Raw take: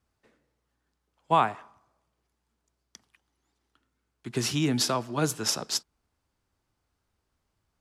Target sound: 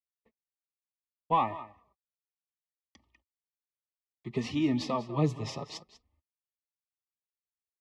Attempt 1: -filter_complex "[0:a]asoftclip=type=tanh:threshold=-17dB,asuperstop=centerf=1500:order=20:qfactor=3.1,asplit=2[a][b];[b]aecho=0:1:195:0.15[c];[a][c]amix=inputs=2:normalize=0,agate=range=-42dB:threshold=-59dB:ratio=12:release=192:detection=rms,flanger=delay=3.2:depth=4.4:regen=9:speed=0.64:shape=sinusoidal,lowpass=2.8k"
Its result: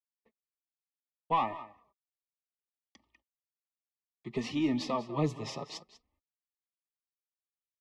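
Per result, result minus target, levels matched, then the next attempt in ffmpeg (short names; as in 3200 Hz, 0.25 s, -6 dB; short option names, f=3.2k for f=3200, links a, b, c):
soft clip: distortion +8 dB; 125 Hz band -2.5 dB
-filter_complex "[0:a]asoftclip=type=tanh:threshold=-10.5dB,asuperstop=centerf=1500:order=20:qfactor=3.1,asplit=2[a][b];[b]aecho=0:1:195:0.15[c];[a][c]amix=inputs=2:normalize=0,agate=range=-42dB:threshold=-59dB:ratio=12:release=192:detection=rms,flanger=delay=3.2:depth=4.4:regen=9:speed=0.64:shape=sinusoidal,lowpass=2.8k"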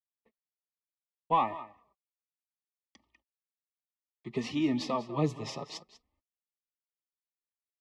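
125 Hz band -3.0 dB
-filter_complex "[0:a]asoftclip=type=tanh:threshold=-10.5dB,asuperstop=centerf=1500:order=20:qfactor=3.1,asplit=2[a][b];[b]aecho=0:1:195:0.15[c];[a][c]amix=inputs=2:normalize=0,agate=range=-42dB:threshold=-59dB:ratio=12:release=192:detection=rms,flanger=delay=3.2:depth=4.4:regen=9:speed=0.64:shape=sinusoidal,lowpass=2.8k,equalizer=f=81:t=o:w=1.2:g=11"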